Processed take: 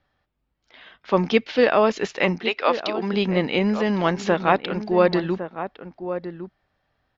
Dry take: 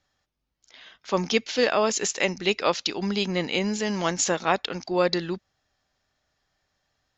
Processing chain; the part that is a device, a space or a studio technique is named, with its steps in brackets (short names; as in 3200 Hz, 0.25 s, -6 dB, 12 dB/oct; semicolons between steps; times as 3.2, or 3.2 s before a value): 2.37–3.12 HPF 800 Hz -> 240 Hz 12 dB/oct; shout across a valley (air absorption 320 m; outdoor echo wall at 190 m, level -10 dB); gain +6 dB